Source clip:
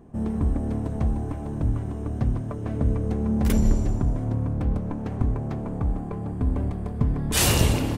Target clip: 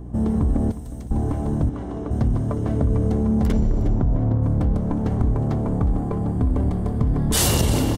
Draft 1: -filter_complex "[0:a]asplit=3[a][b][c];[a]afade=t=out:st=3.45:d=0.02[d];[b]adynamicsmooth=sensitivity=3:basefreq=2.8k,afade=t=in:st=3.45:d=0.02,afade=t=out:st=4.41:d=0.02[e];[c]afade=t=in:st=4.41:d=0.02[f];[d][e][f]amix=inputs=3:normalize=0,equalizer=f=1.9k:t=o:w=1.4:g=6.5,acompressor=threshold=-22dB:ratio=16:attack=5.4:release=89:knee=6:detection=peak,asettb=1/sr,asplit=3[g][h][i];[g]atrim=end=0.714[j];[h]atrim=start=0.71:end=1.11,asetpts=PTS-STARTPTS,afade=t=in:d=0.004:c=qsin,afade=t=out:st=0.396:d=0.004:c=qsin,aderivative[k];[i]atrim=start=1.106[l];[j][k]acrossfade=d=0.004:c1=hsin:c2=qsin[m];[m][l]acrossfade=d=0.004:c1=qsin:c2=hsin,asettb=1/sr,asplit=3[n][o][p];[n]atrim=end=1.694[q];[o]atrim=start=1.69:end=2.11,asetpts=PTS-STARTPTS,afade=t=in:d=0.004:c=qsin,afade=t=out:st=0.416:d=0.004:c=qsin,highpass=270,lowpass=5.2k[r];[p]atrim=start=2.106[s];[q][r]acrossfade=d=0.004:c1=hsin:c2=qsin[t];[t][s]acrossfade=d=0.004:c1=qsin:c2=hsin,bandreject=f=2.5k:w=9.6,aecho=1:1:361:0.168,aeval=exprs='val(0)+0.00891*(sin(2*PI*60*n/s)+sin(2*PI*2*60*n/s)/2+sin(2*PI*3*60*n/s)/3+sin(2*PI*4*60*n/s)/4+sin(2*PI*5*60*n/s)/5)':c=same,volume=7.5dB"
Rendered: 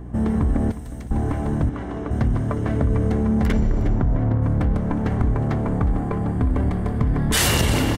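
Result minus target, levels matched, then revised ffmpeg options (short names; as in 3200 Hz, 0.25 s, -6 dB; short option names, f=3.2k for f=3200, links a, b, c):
2000 Hz band +7.5 dB
-filter_complex "[0:a]asplit=3[a][b][c];[a]afade=t=out:st=3.45:d=0.02[d];[b]adynamicsmooth=sensitivity=3:basefreq=2.8k,afade=t=in:st=3.45:d=0.02,afade=t=out:st=4.41:d=0.02[e];[c]afade=t=in:st=4.41:d=0.02[f];[d][e][f]amix=inputs=3:normalize=0,equalizer=f=1.9k:t=o:w=1.4:g=-4,acompressor=threshold=-22dB:ratio=16:attack=5.4:release=89:knee=6:detection=peak,asettb=1/sr,asplit=3[g][h][i];[g]atrim=end=0.714[j];[h]atrim=start=0.71:end=1.11,asetpts=PTS-STARTPTS,afade=t=in:d=0.004:c=qsin,afade=t=out:st=0.396:d=0.004:c=qsin,aderivative[k];[i]atrim=start=1.106[l];[j][k]acrossfade=d=0.004:c1=hsin:c2=qsin[m];[m][l]acrossfade=d=0.004:c1=qsin:c2=hsin,asettb=1/sr,asplit=3[n][o][p];[n]atrim=end=1.694[q];[o]atrim=start=1.69:end=2.11,asetpts=PTS-STARTPTS,afade=t=in:d=0.004:c=qsin,afade=t=out:st=0.416:d=0.004:c=qsin,highpass=270,lowpass=5.2k[r];[p]atrim=start=2.106[s];[q][r]acrossfade=d=0.004:c1=hsin:c2=qsin[t];[t][s]acrossfade=d=0.004:c1=qsin:c2=hsin,bandreject=f=2.5k:w=9.6,aecho=1:1:361:0.168,aeval=exprs='val(0)+0.00891*(sin(2*PI*60*n/s)+sin(2*PI*2*60*n/s)/2+sin(2*PI*3*60*n/s)/3+sin(2*PI*4*60*n/s)/4+sin(2*PI*5*60*n/s)/5)':c=same,volume=7.5dB"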